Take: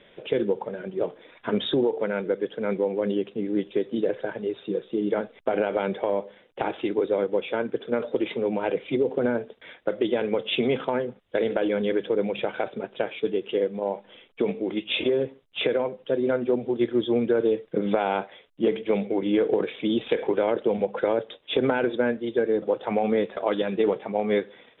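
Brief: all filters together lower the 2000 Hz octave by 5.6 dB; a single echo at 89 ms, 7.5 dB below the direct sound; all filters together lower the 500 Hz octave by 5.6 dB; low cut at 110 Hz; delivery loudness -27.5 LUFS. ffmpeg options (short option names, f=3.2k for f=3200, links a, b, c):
-af "highpass=110,equalizer=f=500:t=o:g=-6.5,equalizer=f=2k:t=o:g=-7.5,aecho=1:1:89:0.422,volume=2.5dB"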